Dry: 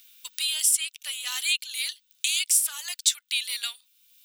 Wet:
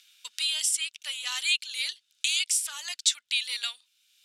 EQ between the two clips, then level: LPF 7400 Hz 12 dB/oct; low shelf 310 Hz +8.5 dB; 0.0 dB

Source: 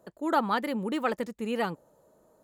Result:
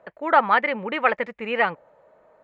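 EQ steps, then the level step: synth low-pass 2200 Hz, resonance Q 3.3; resonant low shelf 430 Hz -7 dB, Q 1.5; +6.0 dB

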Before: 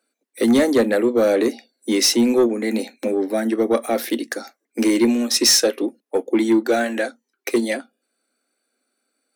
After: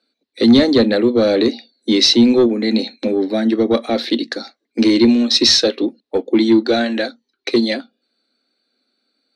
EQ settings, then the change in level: synth low-pass 4100 Hz, resonance Q 6.4; bell 93 Hz +5.5 dB 2.2 oct; low shelf 290 Hz +8.5 dB; -1.0 dB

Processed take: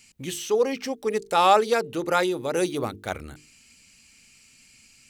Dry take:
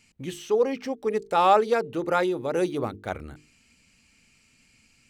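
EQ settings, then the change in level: high shelf 3000 Hz +11.5 dB; 0.0 dB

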